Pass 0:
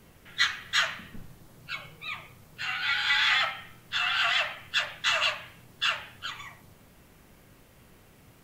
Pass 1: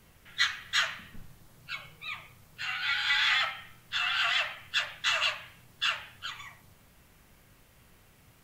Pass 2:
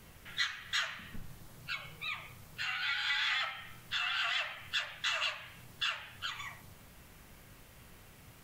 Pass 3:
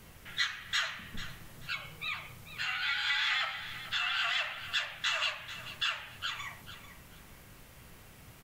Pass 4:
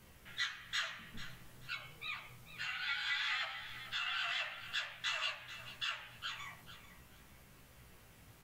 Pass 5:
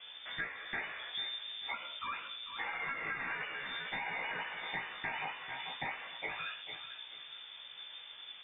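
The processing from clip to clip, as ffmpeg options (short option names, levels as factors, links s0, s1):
-af "equalizer=f=330:w=0.53:g=-6,volume=0.841"
-af "acompressor=threshold=0.00794:ratio=2,volume=1.5"
-af "aecho=1:1:442|884|1326:0.224|0.056|0.014,volume=1.26"
-af "flanger=delay=15:depth=3.1:speed=0.54,volume=0.668"
-af "aemphasis=mode=reproduction:type=75kf,lowpass=f=3100:t=q:w=0.5098,lowpass=f=3100:t=q:w=0.6013,lowpass=f=3100:t=q:w=0.9,lowpass=f=3100:t=q:w=2.563,afreqshift=-3600,acompressor=threshold=0.00447:ratio=6,volume=3.55"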